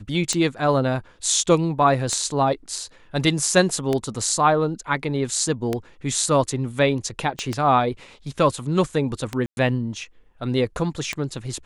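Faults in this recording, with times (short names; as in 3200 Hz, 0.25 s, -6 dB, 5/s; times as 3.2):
tick 33 1/3 rpm -9 dBFS
7.39 pop -15 dBFS
9.46–9.57 gap 0.111 s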